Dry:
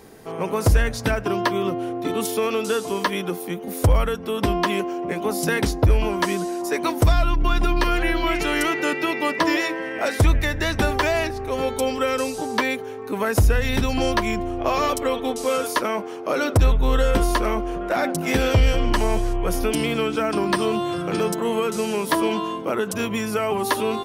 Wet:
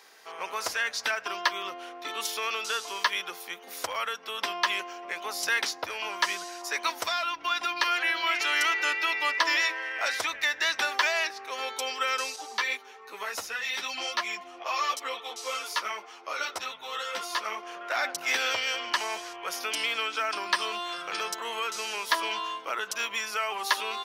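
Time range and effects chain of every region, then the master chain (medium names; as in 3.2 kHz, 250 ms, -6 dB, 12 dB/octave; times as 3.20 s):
12.36–17.63 s: band-stop 1.6 kHz, Q 15 + three-phase chorus
whole clip: high-pass 1.2 kHz 12 dB/octave; resonant high shelf 7.2 kHz -6.5 dB, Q 1.5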